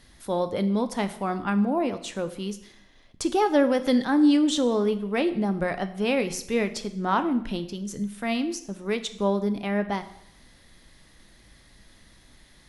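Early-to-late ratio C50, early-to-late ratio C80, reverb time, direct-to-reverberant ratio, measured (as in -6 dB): 13.5 dB, 16.0 dB, 0.70 s, 9.5 dB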